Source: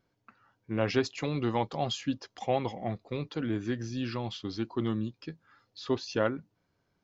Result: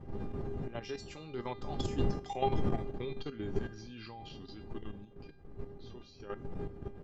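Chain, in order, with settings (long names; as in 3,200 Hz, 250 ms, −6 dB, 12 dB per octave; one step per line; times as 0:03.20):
source passing by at 0:02.48, 23 m/s, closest 21 metres
wind on the microphone 220 Hz −32 dBFS
tuned comb filter 400 Hz, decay 0.33 s, harmonics all, mix 90%
output level in coarse steps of 10 dB
level +13 dB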